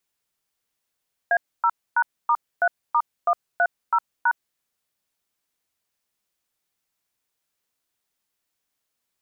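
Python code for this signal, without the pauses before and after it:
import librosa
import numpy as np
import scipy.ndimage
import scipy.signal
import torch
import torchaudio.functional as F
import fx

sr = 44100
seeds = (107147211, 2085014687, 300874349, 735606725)

y = fx.dtmf(sr, digits='A0#*3*130#', tone_ms=60, gap_ms=267, level_db=-18.5)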